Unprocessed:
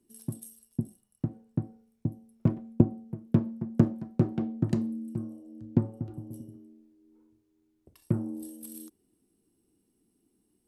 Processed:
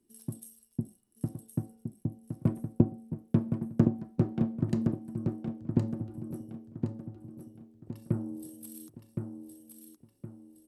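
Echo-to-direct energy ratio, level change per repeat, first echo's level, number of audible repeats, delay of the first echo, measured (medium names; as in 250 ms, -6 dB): -5.0 dB, -9.0 dB, -5.5 dB, 4, 1066 ms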